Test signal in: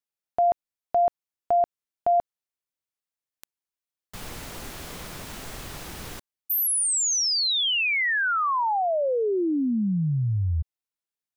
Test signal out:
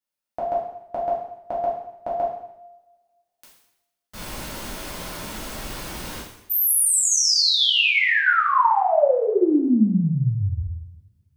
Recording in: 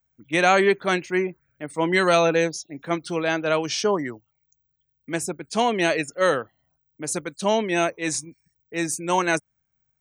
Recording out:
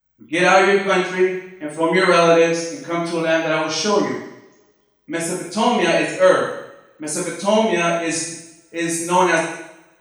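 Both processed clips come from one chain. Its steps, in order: notch 7200 Hz, Q 19; two-slope reverb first 0.78 s, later 2 s, from -26 dB, DRR -7.5 dB; gain -3 dB

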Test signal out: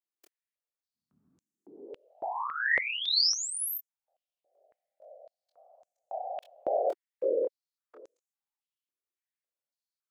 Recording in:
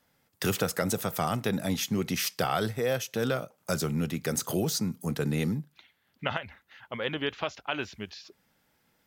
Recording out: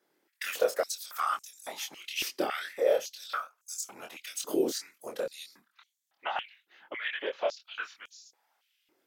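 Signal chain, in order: whisperiser; chorus 2.2 Hz, depth 3.4 ms; stepped high-pass 3.6 Hz 350–6700 Hz; gain -3 dB

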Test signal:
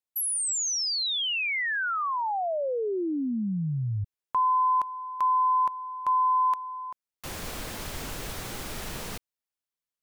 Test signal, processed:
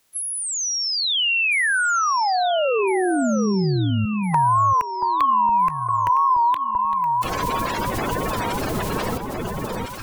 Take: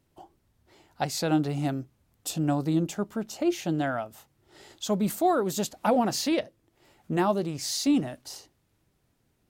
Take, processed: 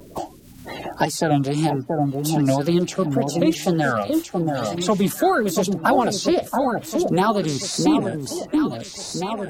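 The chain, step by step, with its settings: bin magnitudes rounded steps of 30 dB; wow and flutter 140 cents; on a send: echo with dull and thin repeats by turns 0.679 s, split 1100 Hz, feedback 51%, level -5.5 dB; on the sum: three-band squash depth 70%; gain +7.5 dB

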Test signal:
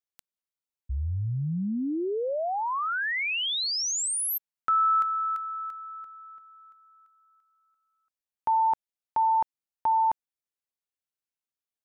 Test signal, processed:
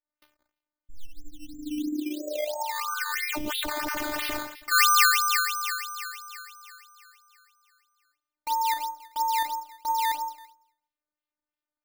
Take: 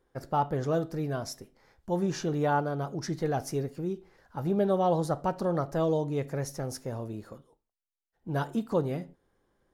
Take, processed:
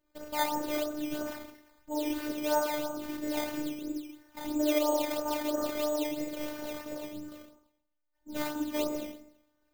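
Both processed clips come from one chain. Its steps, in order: Schroeder reverb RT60 0.68 s, combs from 29 ms, DRR -4.5 dB; decimation with a swept rate 11×, swing 100% 3 Hz; robotiser 300 Hz; gain -5.5 dB

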